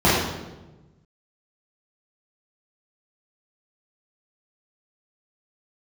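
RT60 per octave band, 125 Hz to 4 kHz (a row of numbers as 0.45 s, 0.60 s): 1.8 s, 1.4 s, 1.3 s, 1.0 s, 0.85 s, 0.80 s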